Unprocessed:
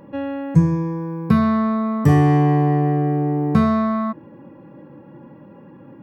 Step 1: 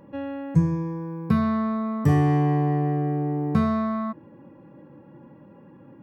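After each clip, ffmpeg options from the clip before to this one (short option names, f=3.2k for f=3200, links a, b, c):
-af "equalizer=f=68:t=o:w=1.4:g=3,volume=-6dB"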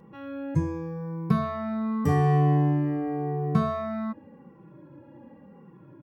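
-filter_complex "[0:a]asplit=2[a][b];[b]adelay=2.2,afreqshift=-0.89[c];[a][c]amix=inputs=2:normalize=1,volume=1.5dB"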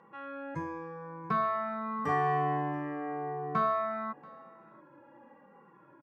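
-af "bandpass=f=1.3k:t=q:w=1.2:csg=0,aecho=1:1:683:0.0708,volume=4dB"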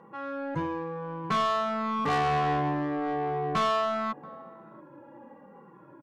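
-filter_complex "[0:a]asplit=2[a][b];[b]adynamicsmooth=sensitivity=6.5:basefreq=1.1k,volume=1dB[c];[a][c]amix=inputs=2:normalize=0,asoftclip=type=tanh:threshold=-24.5dB,volume=2dB"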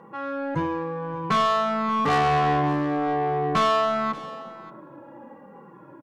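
-af "aecho=1:1:581:0.133,volume=5dB"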